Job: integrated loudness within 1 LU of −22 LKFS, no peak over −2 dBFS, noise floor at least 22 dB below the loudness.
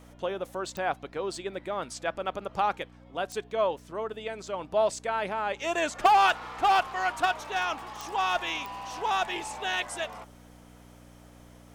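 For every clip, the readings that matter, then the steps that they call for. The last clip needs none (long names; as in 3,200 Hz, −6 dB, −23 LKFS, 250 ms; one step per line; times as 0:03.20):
number of clicks 4; mains hum 60 Hz; hum harmonics up to 300 Hz; level of the hum −50 dBFS; integrated loudness −29.5 LKFS; sample peak −12.5 dBFS; target loudness −22.0 LKFS
→ click removal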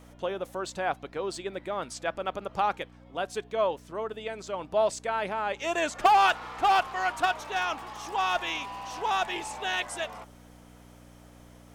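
number of clicks 0; mains hum 60 Hz; hum harmonics up to 300 Hz; level of the hum −50 dBFS
→ hum removal 60 Hz, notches 5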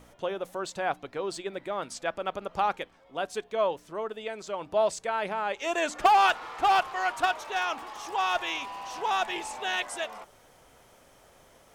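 mains hum none found; integrated loudness −29.5 LKFS; sample peak −12.5 dBFS; target loudness −22.0 LKFS
→ level +7.5 dB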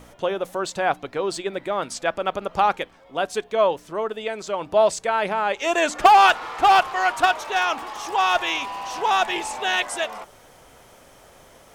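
integrated loudness −22.0 LKFS; sample peak −5.0 dBFS; background noise floor −51 dBFS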